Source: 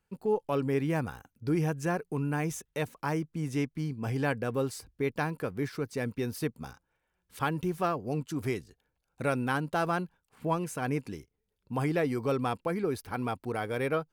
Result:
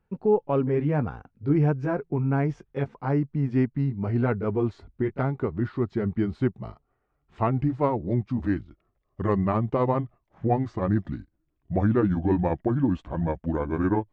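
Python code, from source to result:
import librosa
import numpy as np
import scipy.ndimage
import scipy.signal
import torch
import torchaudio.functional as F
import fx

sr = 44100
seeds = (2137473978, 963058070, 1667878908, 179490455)

y = fx.pitch_glide(x, sr, semitones=-7.0, runs='starting unshifted')
y = fx.spacing_loss(y, sr, db_at_10k=44)
y = F.gain(torch.from_numpy(y), 9.0).numpy()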